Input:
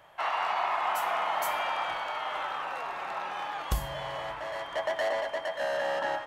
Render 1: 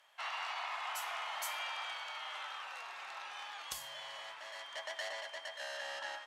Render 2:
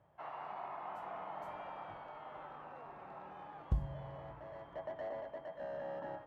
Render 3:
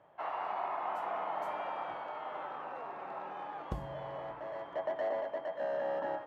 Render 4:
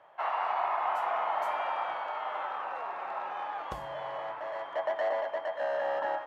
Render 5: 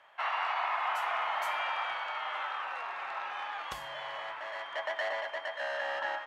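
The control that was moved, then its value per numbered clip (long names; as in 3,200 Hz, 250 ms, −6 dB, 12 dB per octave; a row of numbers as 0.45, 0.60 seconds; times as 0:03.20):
resonant band-pass, frequency: 5,800, 110, 290, 730, 1,900 Hertz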